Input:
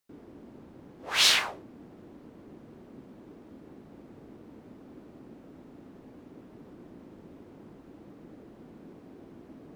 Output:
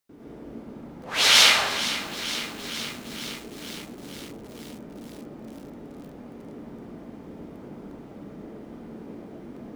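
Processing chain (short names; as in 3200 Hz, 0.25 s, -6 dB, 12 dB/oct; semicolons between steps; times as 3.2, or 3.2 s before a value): plate-style reverb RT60 1 s, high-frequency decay 0.7×, pre-delay 90 ms, DRR -7.5 dB; lo-fi delay 0.464 s, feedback 80%, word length 6-bit, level -12 dB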